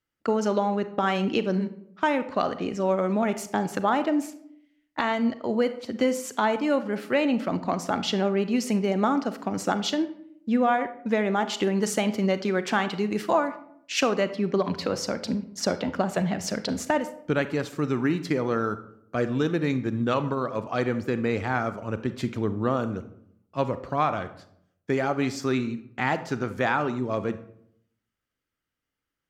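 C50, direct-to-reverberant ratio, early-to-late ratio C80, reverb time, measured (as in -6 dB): 13.0 dB, 11.0 dB, 16.0 dB, 0.70 s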